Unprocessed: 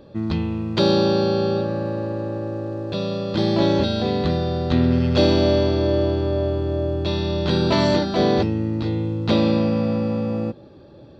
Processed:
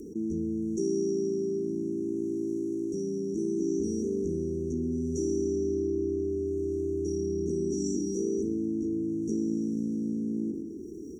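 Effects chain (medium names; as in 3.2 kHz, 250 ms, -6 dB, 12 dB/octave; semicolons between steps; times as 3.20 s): gate -36 dBFS, range -12 dB; tilt EQ +2.5 dB/octave; hum notches 50/100/150/200/250/300 Hz; rotary cabinet horn 0.7 Hz; brick-wall FIR band-stop 470–5600 Hz; static phaser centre 300 Hz, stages 4; on a send: feedback delay 61 ms, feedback 52%, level -17 dB; on the sum: level flattener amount 70%; trim -5 dB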